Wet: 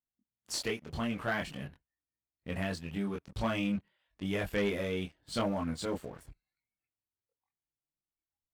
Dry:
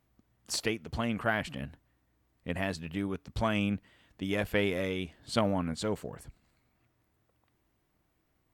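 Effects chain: chorus voices 4, 0.4 Hz, delay 23 ms, depth 3.5 ms; spectral noise reduction 16 dB; sample leveller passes 2; gain -6.5 dB

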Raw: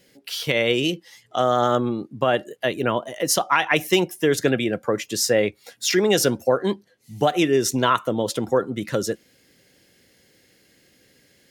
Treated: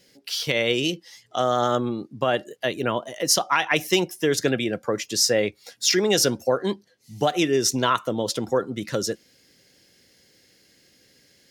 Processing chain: bell 5200 Hz +7 dB 0.9 oct; gain -2.5 dB

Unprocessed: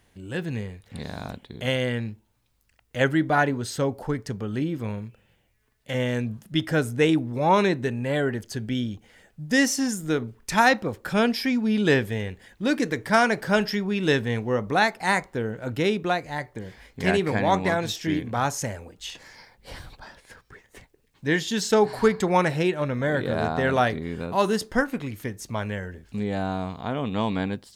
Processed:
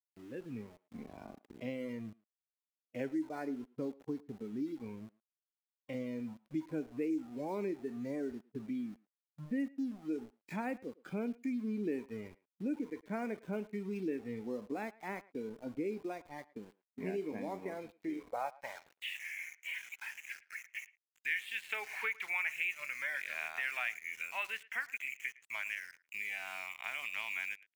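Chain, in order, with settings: HPF 75 Hz 12 dB/oct; band-pass sweep 310 Hz -> 2300 Hz, 17.93–19.26; LPF 3200 Hz 24 dB/oct; bell 2400 Hz +14.5 dB 0.68 oct; compressor 2.5:1, threshold -44 dBFS, peak gain reduction 17.5 dB; sample gate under -51 dBFS; spectral noise reduction 9 dB; speakerphone echo 0.11 s, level -21 dB; gain +3.5 dB

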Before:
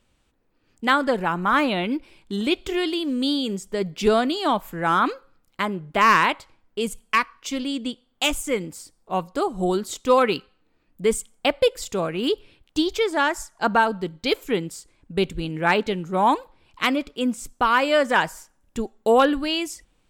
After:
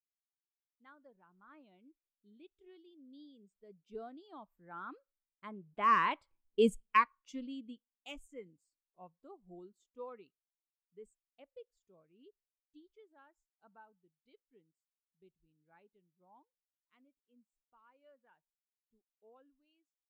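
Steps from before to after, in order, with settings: Doppler pass-by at 6.61, 10 m/s, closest 2.8 m; spectral expander 1.5:1; gain -3.5 dB

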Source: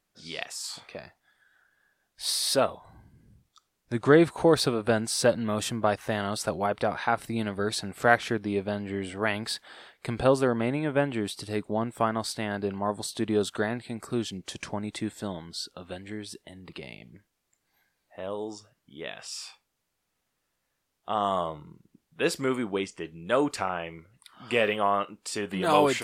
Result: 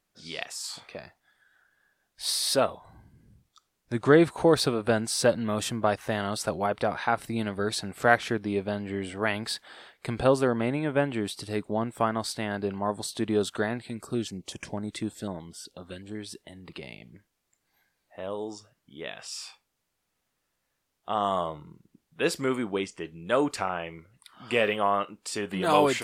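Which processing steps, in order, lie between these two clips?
13.9–16.15 stepped notch 8 Hz 780–4100 Hz

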